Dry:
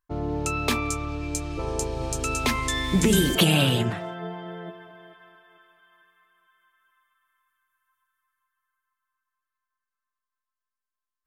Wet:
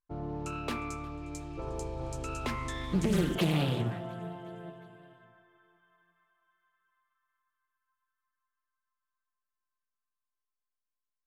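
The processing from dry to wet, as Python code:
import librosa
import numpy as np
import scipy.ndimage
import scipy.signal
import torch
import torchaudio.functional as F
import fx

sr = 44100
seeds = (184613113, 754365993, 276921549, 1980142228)

y = fx.high_shelf(x, sr, hz=2200.0, db=-9.0)
y = fx.echo_feedback(y, sr, ms=358, feedback_pct=58, wet_db=-22)
y = fx.room_shoebox(y, sr, seeds[0], volume_m3=3300.0, walls='furnished', distance_m=0.79)
y = fx.doppler_dist(y, sr, depth_ms=0.43)
y = y * 10.0 ** (-8.0 / 20.0)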